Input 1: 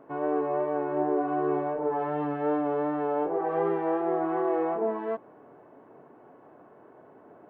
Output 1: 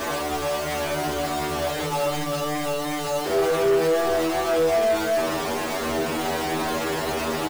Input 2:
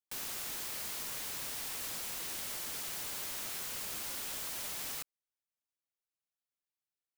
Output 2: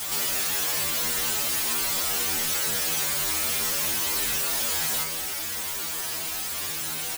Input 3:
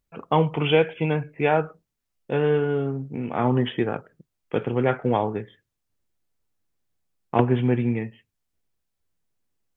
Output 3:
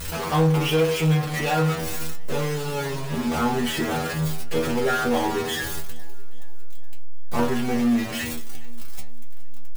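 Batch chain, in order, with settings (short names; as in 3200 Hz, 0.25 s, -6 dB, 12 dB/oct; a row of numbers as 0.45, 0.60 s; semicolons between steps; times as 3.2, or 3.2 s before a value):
zero-crossing step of -19 dBFS; metallic resonator 78 Hz, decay 0.49 s, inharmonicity 0.002; feedback echo 0.417 s, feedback 47%, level -19.5 dB; sample leveller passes 1; in parallel at -6.5 dB: hard clip -24 dBFS; on the sum: match loudness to -24 LUFS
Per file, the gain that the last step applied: +2.5, +1.5, +0.5 dB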